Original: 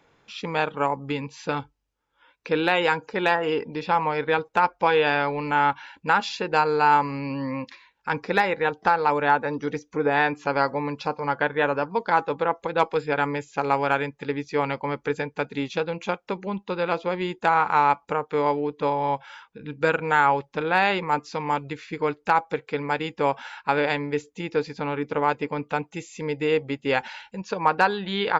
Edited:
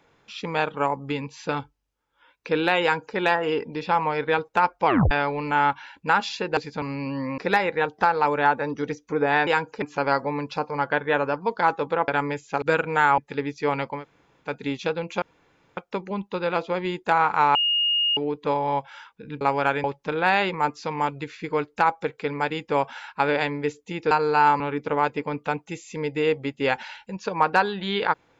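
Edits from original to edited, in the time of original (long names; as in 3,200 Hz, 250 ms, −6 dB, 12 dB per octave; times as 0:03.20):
0:02.82–0:03.17: duplicate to 0:10.31
0:04.86: tape stop 0.25 s
0:06.57–0:07.06: swap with 0:24.60–0:24.85
0:07.62–0:08.22: remove
0:12.57–0:13.12: remove
0:13.66–0:14.09: swap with 0:19.77–0:20.33
0:14.89–0:15.38: fill with room tone, crossfade 0.16 s
0:16.13: splice in room tone 0.55 s
0:17.91–0:18.53: beep over 2,850 Hz −19 dBFS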